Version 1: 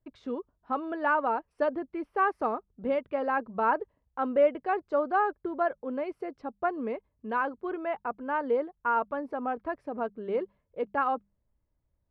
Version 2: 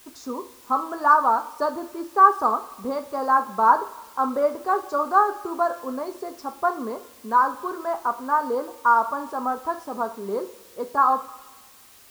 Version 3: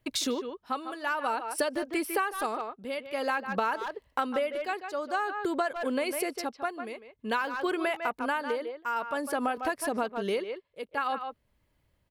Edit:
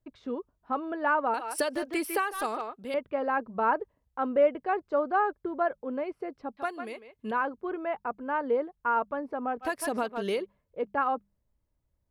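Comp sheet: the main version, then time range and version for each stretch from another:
1
0:01.34–0:02.94: punch in from 3
0:06.57–0:07.31: punch in from 3
0:09.65–0:10.41: punch in from 3, crossfade 0.10 s
not used: 2

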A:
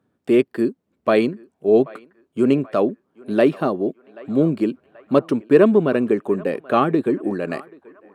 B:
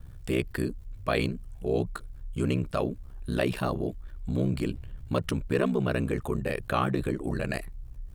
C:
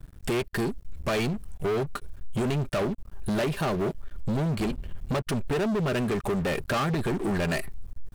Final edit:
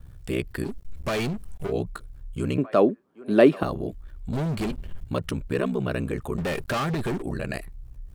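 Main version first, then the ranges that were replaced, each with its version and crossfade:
B
0:00.67–0:01.68: punch in from C, crossfade 0.10 s
0:02.58–0:03.63: punch in from A
0:04.33–0:05.04: punch in from C
0:06.38–0:07.22: punch in from C

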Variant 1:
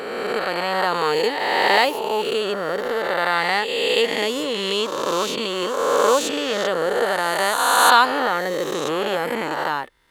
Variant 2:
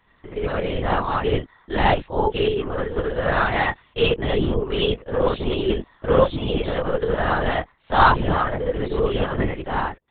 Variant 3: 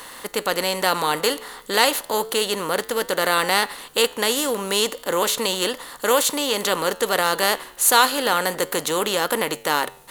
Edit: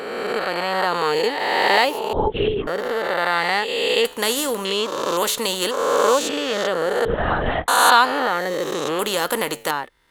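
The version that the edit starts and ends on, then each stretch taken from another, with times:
1
0:02.13–0:02.67: punch in from 2
0:04.05–0:04.65: punch in from 3
0:05.17–0:05.71: punch in from 3
0:07.05–0:07.68: punch in from 2
0:08.99–0:09.71: punch in from 3

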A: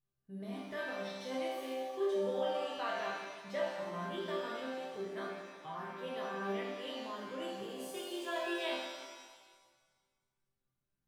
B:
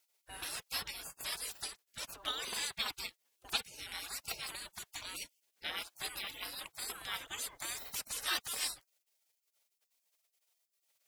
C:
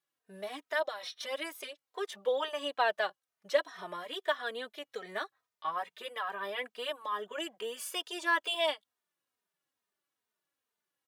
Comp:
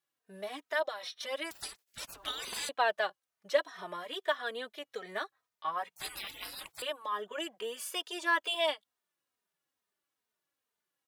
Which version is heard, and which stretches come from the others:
C
0:01.51–0:02.69: punch in from B
0:05.96–0:06.82: punch in from B
not used: A

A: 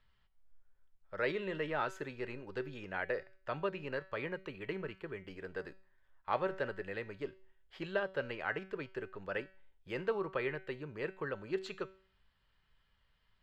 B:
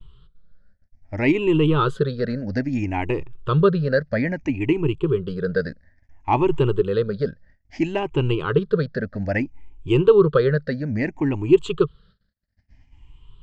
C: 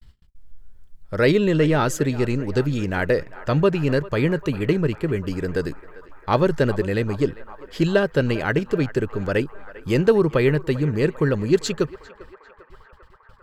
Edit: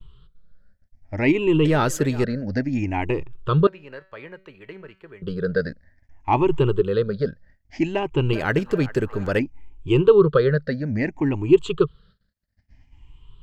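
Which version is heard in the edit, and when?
B
0:01.65–0:02.24: punch in from C
0:03.67–0:05.22: punch in from A
0:08.33–0:09.39: punch in from C

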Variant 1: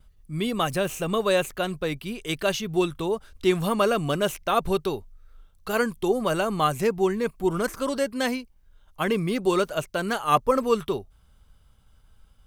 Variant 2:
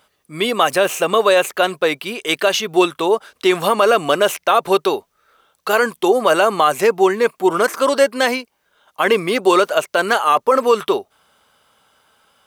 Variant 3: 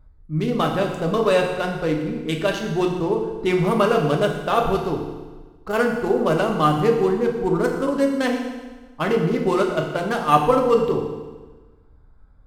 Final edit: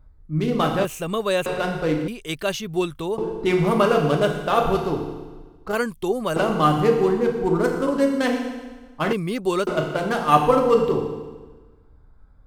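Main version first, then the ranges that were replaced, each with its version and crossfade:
3
0:00.85–0:01.46: punch in from 1
0:02.08–0:03.18: punch in from 1
0:05.75–0:06.36: punch in from 1
0:09.13–0:09.67: punch in from 1
not used: 2

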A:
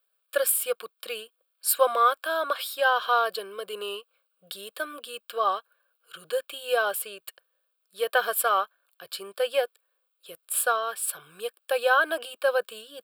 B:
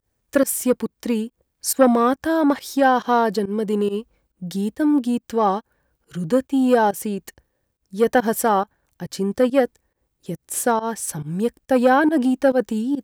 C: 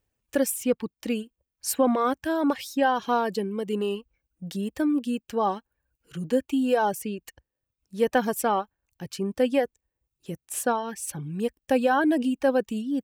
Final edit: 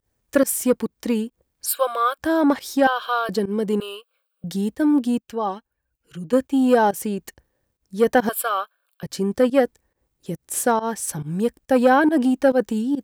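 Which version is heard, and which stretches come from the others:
B
0:01.66–0:02.18: punch in from A
0:02.87–0:03.29: punch in from A
0:03.80–0:04.44: punch in from A
0:05.20–0:06.33: punch in from C
0:08.29–0:09.03: punch in from A

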